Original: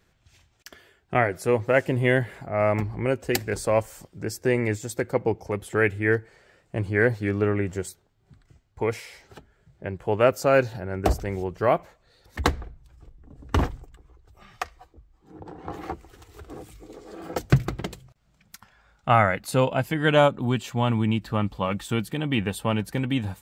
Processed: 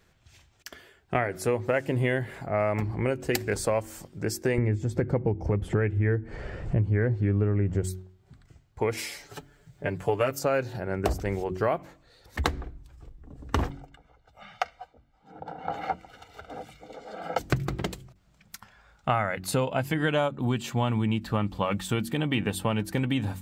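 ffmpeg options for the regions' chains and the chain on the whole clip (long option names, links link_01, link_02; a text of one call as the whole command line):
ffmpeg -i in.wav -filter_complex "[0:a]asettb=1/sr,asplit=3[link_01][link_02][link_03];[link_01]atrim=end=4.584[link_04];[link_02]atrim=start=4.58:end=7.84,asetpts=PTS-STARTPTS,afade=type=in:duration=0.004:curve=qsin,afade=type=out:start_time=3.256:duration=0.004:curve=qsin,bandreject=frequency=3900:width=20,acompressor=mode=upward:threshold=-29dB:ratio=2.5:attack=3.2:release=140:knee=2.83:detection=peak,aemphasis=mode=reproduction:type=riaa[link_05];[link_03]atrim=start=7.836[link_06];[link_04][link_05]acrossfade=duration=0.004:curve1=hsin:curve2=qsin[link_07];[link_07][link_06]acrossfade=duration=0.004:curve1=qsin:curve2=hsin,asettb=1/sr,asplit=3[link_08][link_09][link_10];[link_08]atrim=end=8.974[link_11];[link_09]atrim=start=8.97:end=10.39,asetpts=PTS-STARTPTS,afade=type=in:duration=0.004:curve=qsin,afade=type=out:start_time=1.416:duration=0.004:curve=qsin,highshelf=frequency=4300:gain=8,aecho=1:1:6.9:0.72,atrim=end_sample=62622[link_12];[link_10]atrim=start=10.386[link_13];[link_11][link_12]acrossfade=duration=0.004:curve1=hsin:curve2=qsin[link_14];[link_14][link_13]acrossfade=duration=0.004:curve1=qsin:curve2=hsin,asettb=1/sr,asplit=3[link_15][link_16][link_17];[link_15]atrim=end=13.704[link_18];[link_16]atrim=start=13.7:end=17.39,asetpts=PTS-STARTPTS,afade=type=in:duration=0.004:curve=qsin,afade=type=out:start_time=3.686:duration=0.004:curve=qsin,acrossover=split=170 4800:gain=0.126 1 0.2[link_19][link_20][link_21];[link_19][link_20][link_21]amix=inputs=3:normalize=0,aecho=1:1:1.4:0.96,atrim=end_sample=162729[link_22];[link_17]atrim=start=17.386[link_23];[link_18][link_22]acrossfade=duration=0.004:curve1=hsin:curve2=qsin[link_24];[link_24][link_23]acrossfade=duration=0.004:curve1=qsin:curve2=hsin,bandreject=frequency=46.49:width_type=h:width=4,bandreject=frequency=92.98:width_type=h:width=4,bandreject=frequency=139.47:width_type=h:width=4,bandreject=frequency=185.96:width_type=h:width=4,bandreject=frequency=232.45:width_type=h:width=4,bandreject=frequency=278.94:width_type=h:width=4,bandreject=frequency=325.43:width_type=h:width=4,bandreject=frequency=371.92:width_type=h:width=4,acompressor=threshold=-24dB:ratio=6,volume=2dB" out.wav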